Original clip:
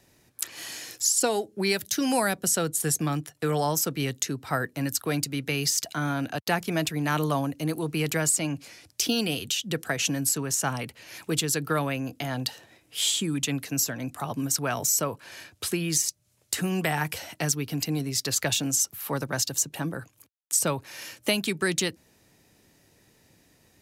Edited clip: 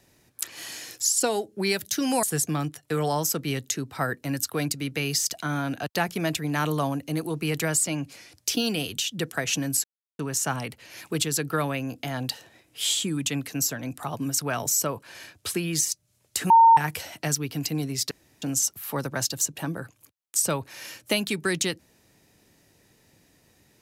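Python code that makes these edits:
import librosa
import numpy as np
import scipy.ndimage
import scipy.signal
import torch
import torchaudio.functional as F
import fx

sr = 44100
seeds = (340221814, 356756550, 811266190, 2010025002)

y = fx.edit(x, sr, fx.cut(start_s=2.23, length_s=0.52),
    fx.insert_silence(at_s=10.36, length_s=0.35),
    fx.bleep(start_s=16.67, length_s=0.27, hz=913.0, db=-10.5),
    fx.room_tone_fill(start_s=18.28, length_s=0.31), tone=tone)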